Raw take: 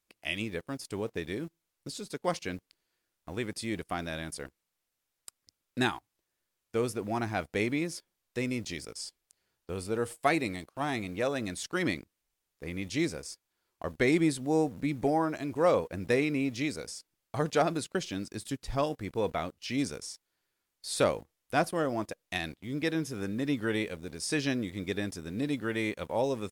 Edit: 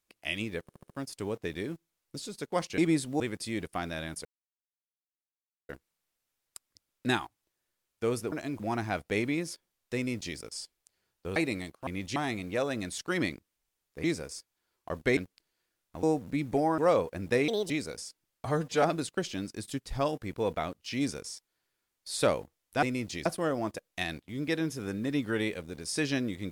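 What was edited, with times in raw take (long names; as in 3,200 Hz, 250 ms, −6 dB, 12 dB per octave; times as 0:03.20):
0:00.62: stutter 0.07 s, 5 plays
0:02.50–0:03.36: swap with 0:14.11–0:14.53
0:04.41: splice in silence 1.44 s
0:08.39–0:08.82: duplicate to 0:21.60
0:09.80–0:10.30: remove
0:12.69–0:12.98: move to 0:10.81
0:15.28–0:15.56: move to 0:07.04
0:16.26–0:16.60: play speed 154%
0:17.35–0:17.60: time-stretch 1.5×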